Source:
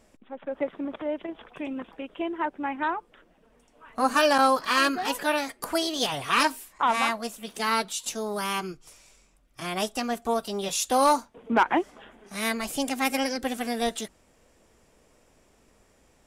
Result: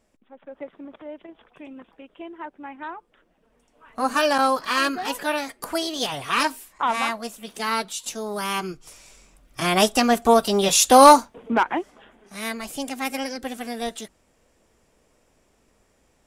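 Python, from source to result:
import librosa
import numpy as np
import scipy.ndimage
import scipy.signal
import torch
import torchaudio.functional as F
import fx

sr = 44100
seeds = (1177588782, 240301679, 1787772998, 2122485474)

y = fx.gain(x, sr, db=fx.line((2.81, -7.5), (4.11, 0.5), (8.22, 0.5), (9.61, 10.5), (11.1, 10.5), (11.75, -2.0)))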